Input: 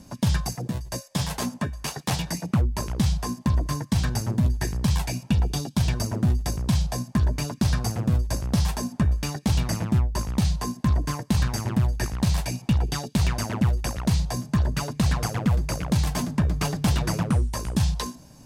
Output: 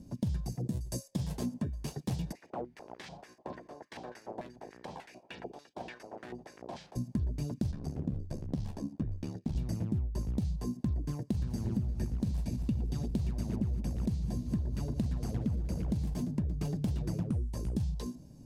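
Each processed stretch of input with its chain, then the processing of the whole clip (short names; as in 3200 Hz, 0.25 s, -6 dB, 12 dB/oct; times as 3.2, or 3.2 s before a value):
0.68–1.13 gate -58 dBFS, range -7 dB + bell 9200 Hz +10.5 dB 1.7 oct
2.31–6.95 spectral limiter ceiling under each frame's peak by 24 dB + LFO band-pass square 3.4 Hz 760–1800 Hz
7.71–9.56 LPF 3400 Hz 6 dB/oct + low shelf 96 Hz -10.5 dB + ring modulator 36 Hz
11.31–16.14 regenerating reverse delay 0.12 s, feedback 75%, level -11 dB + bell 220 Hz +2.5 dB
whole clip: EQ curve 370 Hz 0 dB, 1200 Hz -17 dB, 4700 Hz -12 dB; compressor, threshold -27 dBFS; gain -2.5 dB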